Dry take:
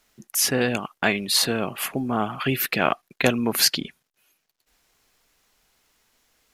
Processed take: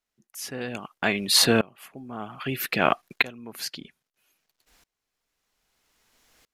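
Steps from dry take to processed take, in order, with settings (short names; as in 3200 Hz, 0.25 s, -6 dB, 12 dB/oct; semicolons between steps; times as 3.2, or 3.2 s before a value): high shelf 12000 Hz -4 dB; dB-ramp tremolo swelling 0.62 Hz, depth 28 dB; gain +6.5 dB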